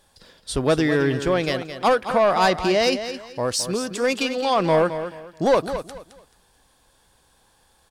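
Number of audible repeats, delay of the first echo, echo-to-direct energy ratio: 3, 216 ms, −10.0 dB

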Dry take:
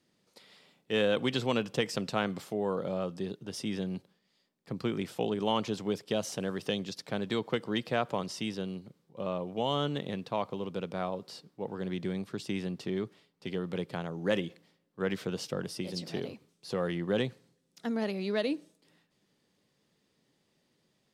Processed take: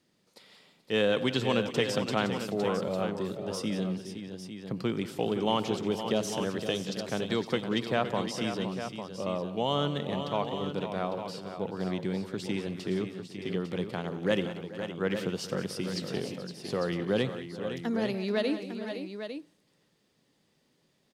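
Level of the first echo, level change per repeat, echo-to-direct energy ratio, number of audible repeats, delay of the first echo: −19.0 dB, repeats not evenly spaced, −5.5 dB, 5, 91 ms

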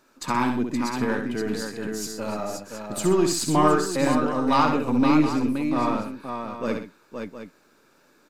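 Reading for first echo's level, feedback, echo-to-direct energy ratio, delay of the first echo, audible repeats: −5.5 dB, repeats not evenly spaced, −2.0 dB, 66 ms, 4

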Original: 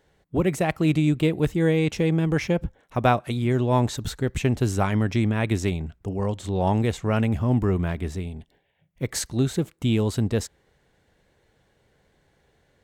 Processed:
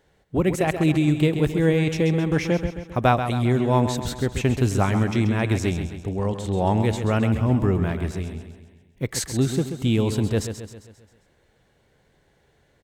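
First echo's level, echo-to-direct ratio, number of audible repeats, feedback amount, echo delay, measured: −9.0 dB, −7.5 dB, 5, 51%, 133 ms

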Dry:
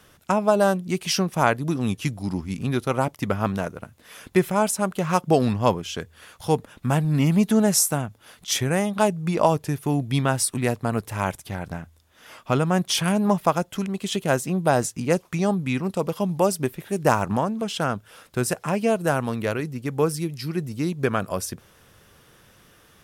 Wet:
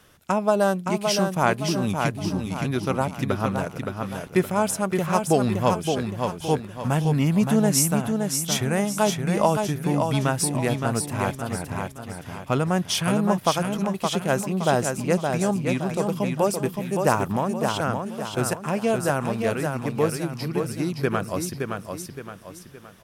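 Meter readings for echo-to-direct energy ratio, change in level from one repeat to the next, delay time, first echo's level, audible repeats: −4.0 dB, −8.0 dB, 568 ms, −5.0 dB, 4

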